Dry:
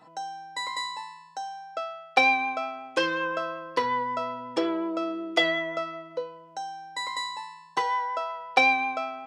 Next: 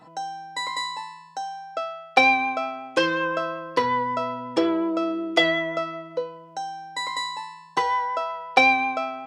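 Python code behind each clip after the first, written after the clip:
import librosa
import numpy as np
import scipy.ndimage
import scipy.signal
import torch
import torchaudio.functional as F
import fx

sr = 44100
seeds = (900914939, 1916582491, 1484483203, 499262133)

y = fx.low_shelf(x, sr, hz=260.0, db=6.5)
y = y * librosa.db_to_amplitude(3.0)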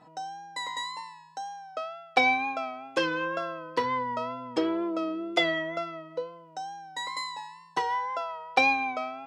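y = fx.wow_flutter(x, sr, seeds[0], rate_hz=2.1, depth_cents=50.0)
y = y * librosa.db_to_amplitude(-5.5)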